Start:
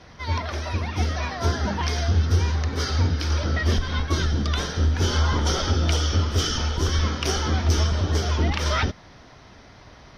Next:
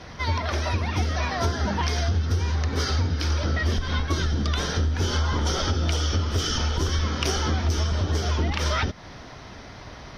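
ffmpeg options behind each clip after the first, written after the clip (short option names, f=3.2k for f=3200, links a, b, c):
-af "acompressor=threshold=-28dB:ratio=4,volume=6dB"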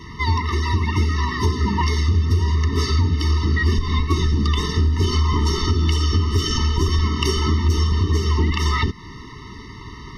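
-af "afftfilt=real='re*eq(mod(floor(b*sr/1024/440),2),0)':imag='im*eq(mod(floor(b*sr/1024/440),2),0)':win_size=1024:overlap=0.75,volume=6dB"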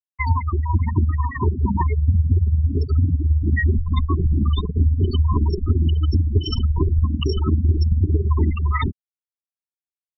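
-af "bandreject=f=640:w=12,afftfilt=real='re*gte(hypot(re,im),0.282)':imag='im*gte(hypot(re,im),0.282)':win_size=1024:overlap=0.75,tremolo=f=18:d=0.51,volume=3dB"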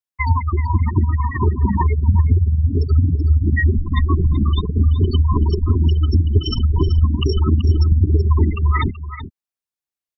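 -af "aecho=1:1:379:0.251,volume=2.5dB"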